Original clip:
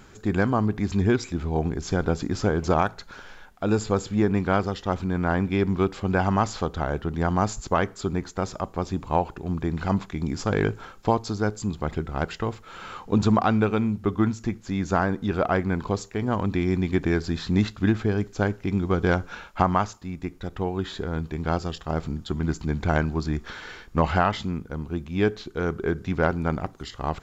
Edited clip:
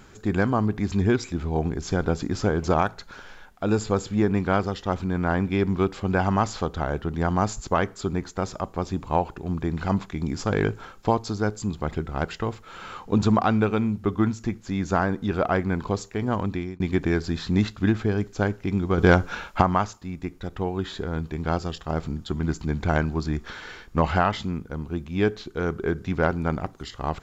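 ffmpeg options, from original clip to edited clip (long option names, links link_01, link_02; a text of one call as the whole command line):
ffmpeg -i in.wav -filter_complex "[0:a]asplit=4[link_01][link_02][link_03][link_04];[link_01]atrim=end=16.8,asetpts=PTS-STARTPTS,afade=type=out:start_time=16.27:duration=0.53:curve=qsin[link_05];[link_02]atrim=start=16.8:end=18.982,asetpts=PTS-STARTPTS,afade=type=in:duration=0.004:curve=hsin[link_06];[link_03]atrim=start=18.978:end=19.612,asetpts=PTS-STARTPTS,volume=5.5dB[link_07];[link_04]atrim=start=19.608[link_08];[link_05][link_06]concat=n=2:v=0:a=1[link_09];[link_09][link_07]acrossfade=duration=0.004:curve1=hsin:curve2=hsin[link_10];[link_10][link_08]acrossfade=duration=0.004:curve1=hsin:curve2=hsin" out.wav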